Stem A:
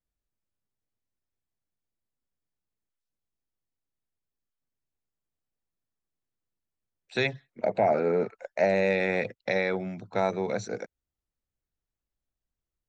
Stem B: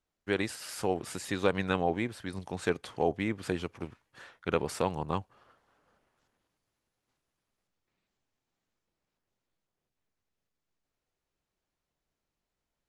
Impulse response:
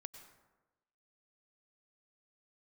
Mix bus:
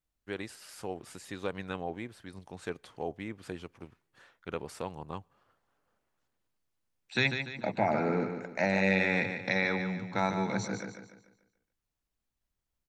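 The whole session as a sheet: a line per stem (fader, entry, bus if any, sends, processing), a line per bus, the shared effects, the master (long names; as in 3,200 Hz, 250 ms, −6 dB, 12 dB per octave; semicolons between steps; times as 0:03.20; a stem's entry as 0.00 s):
+1.0 dB, 0.00 s, no send, echo send −7.5 dB, flat-topped bell 520 Hz −9 dB 1.1 octaves
−8.5 dB, 0.00 s, send −21 dB, no echo send, no processing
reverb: on, RT60 1.1 s, pre-delay 87 ms
echo: repeating echo 146 ms, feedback 41%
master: no processing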